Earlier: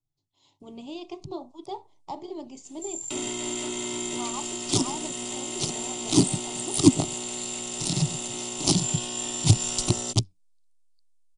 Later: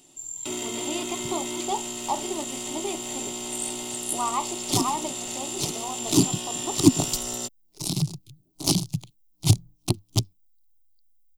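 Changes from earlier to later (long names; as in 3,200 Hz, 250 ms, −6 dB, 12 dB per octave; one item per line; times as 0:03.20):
speech: add parametric band 1,600 Hz +13 dB 2.8 octaves
first sound: entry −2.65 s
master: remove Butterworth low-pass 10,000 Hz 96 dB per octave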